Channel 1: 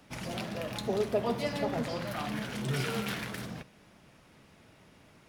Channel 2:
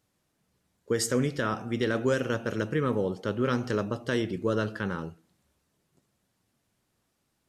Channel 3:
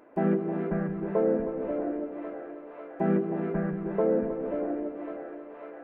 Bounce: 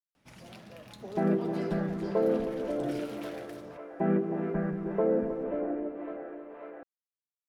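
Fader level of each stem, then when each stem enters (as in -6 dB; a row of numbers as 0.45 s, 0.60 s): -12.0 dB, mute, -1.5 dB; 0.15 s, mute, 1.00 s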